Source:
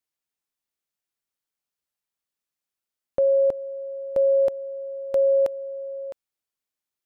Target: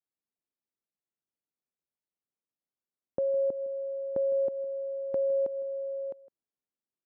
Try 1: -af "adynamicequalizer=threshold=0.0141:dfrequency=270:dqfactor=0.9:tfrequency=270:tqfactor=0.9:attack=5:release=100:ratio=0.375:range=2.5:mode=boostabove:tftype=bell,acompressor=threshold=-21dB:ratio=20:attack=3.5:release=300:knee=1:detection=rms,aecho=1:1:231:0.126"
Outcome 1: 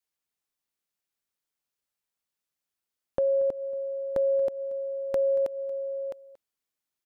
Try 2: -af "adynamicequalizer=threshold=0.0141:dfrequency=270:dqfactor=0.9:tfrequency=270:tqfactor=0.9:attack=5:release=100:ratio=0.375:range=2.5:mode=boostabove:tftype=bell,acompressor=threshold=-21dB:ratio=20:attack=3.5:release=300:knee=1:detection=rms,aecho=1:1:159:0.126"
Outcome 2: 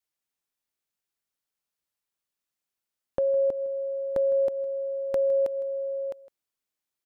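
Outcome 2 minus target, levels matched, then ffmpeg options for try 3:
250 Hz band -3.5 dB
-af "adynamicequalizer=threshold=0.0141:dfrequency=270:dqfactor=0.9:tfrequency=270:tqfactor=0.9:attack=5:release=100:ratio=0.375:range=2.5:mode=boostabove:tftype=bell,acompressor=threshold=-21dB:ratio=20:attack=3.5:release=300:knee=1:detection=rms,bandpass=f=250:t=q:w=0.7:csg=0,aecho=1:1:159:0.126"

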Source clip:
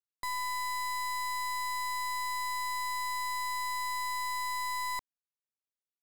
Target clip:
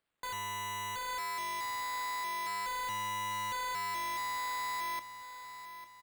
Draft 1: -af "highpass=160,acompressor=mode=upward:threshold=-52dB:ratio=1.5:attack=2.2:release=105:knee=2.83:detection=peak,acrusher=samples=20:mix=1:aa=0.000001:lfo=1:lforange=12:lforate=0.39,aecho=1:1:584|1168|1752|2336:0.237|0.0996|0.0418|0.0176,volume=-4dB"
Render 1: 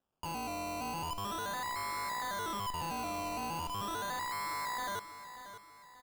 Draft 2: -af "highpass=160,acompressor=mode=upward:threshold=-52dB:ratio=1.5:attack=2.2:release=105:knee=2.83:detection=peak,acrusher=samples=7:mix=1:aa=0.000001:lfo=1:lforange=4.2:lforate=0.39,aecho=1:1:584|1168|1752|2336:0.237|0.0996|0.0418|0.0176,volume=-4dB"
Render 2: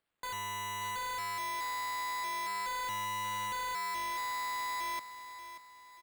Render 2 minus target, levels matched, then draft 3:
echo 0.266 s early
-af "highpass=160,acompressor=mode=upward:threshold=-52dB:ratio=1.5:attack=2.2:release=105:knee=2.83:detection=peak,acrusher=samples=7:mix=1:aa=0.000001:lfo=1:lforange=4.2:lforate=0.39,aecho=1:1:850|1700|2550|3400:0.237|0.0996|0.0418|0.0176,volume=-4dB"

